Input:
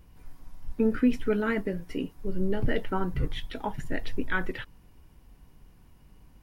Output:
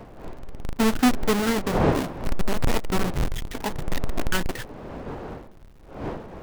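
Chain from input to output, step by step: square wave that keeps the level; wind noise 570 Hz -33 dBFS

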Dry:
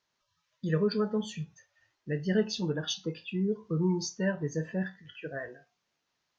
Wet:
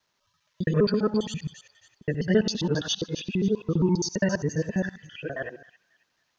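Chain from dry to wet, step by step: time reversed locally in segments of 67 ms; feedback echo behind a high-pass 271 ms, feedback 32%, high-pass 3.1 kHz, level -10 dB; trim +5.5 dB

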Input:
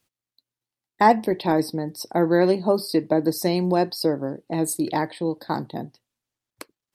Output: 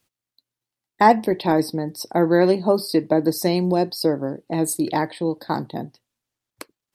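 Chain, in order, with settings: 3.58–4.05 s: dynamic bell 1.5 kHz, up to -7 dB, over -38 dBFS, Q 0.8; trim +2 dB

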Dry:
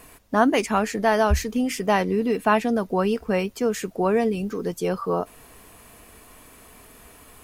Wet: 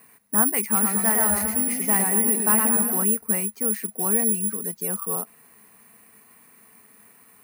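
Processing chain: cabinet simulation 160–4700 Hz, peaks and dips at 210 Hz +8 dB, 310 Hz -8 dB, 590 Hz -9 dB, 2 kHz +5 dB, 3.3 kHz -9 dB; careless resampling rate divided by 4×, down none, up zero stuff; 0.61–3.04 s: modulated delay 112 ms, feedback 54%, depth 106 cents, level -3.5 dB; trim -7 dB

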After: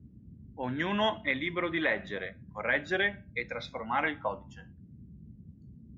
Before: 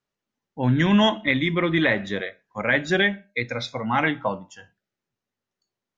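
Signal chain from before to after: tone controls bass -14 dB, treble -10 dB; band noise 54–230 Hz -44 dBFS; trim -6.5 dB

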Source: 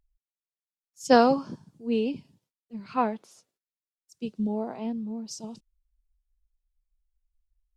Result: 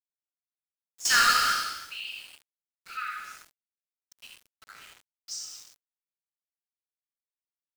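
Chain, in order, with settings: treble shelf 4.4 kHz -4 dB; in parallel at -0.5 dB: peak limiter -17 dBFS, peak gain reduction 11 dB; on the sum: brick-wall FIR high-pass 1.2 kHz; 1.05–1.53 s: power-law waveshaper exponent 0.35; on a send: early reflections 65 ms -13.5 dB, 77 ms -7.5 dB; on the sum: gated-style reverb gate 430 ms falling, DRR -1.5 dB; small samples zeroed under -43 dBFS; trim -2.5 dB

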